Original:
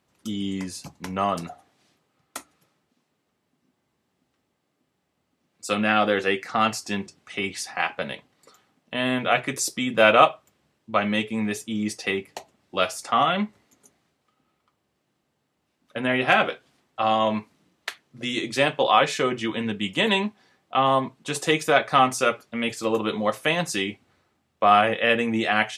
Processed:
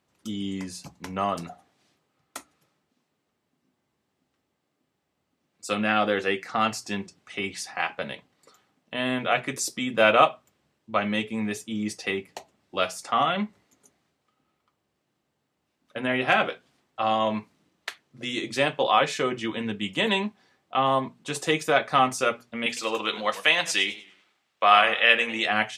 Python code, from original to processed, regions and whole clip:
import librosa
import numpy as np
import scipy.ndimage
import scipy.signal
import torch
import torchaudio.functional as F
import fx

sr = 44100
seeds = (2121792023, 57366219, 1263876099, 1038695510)

y = fx.chain(x, sr, fx.highpass(hz=580.0, slope=6),
    fx.peak_eq(hz=3100.0, db=8.0, octaves=2.7),
    fx.echo_warbled(ms=100, feedback_pct=34, rate_hz=2.8, cents=145, wet_db=-15.5), at=(22.66, 25.46))
y = fx.peak_eq(y, sr, hz=11000.0, db=-3.0, octaves=0.28)
y = fx.hum_notches(y, sr, base_hz=60, count=4)
y = F.gain(torch.from_numpy(y), -2.5).numpy()